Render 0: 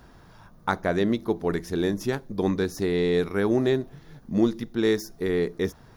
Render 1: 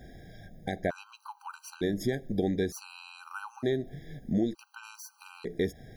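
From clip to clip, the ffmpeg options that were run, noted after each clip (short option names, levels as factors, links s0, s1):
-af "acompressor=threshold=0.0398:ratio=5,afftfilt=real='re*gt(sin(2*PI*0.55*pts/sr)*(1-2*mod(floor(b*sr/1024/790),2)),0)':imag='im*gt(sin(2*PI*0.55*pts/sr)*(1-2*mod(floor(b*sr/1024/790),2)),0)':win_size=1024:overlap=0.75,volume=1.41"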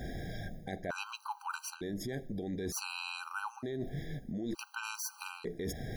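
-af "alimiter=level_in=1.33:limit=0.0631:level=0:latency=1:release=70,volume=0.75,areverse,acompressor=threshold=0.00562:ratio=10,areverse,volume=3.16"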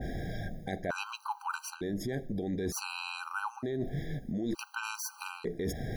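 -af "adynamicequalizer=threshold=0.002:dfrequency=2000:dqfactor=0.7:tfrequency=2000:tqfactor=0.7:attack=5:release=100:ratio=0.375:range=2:mode=cutabove:tftype=highshelf,volume=1.58"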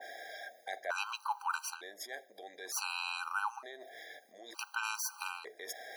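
-af "highpass=f=670:w=0.5412,highpass=f=670:w=1.3066,volume=1.12"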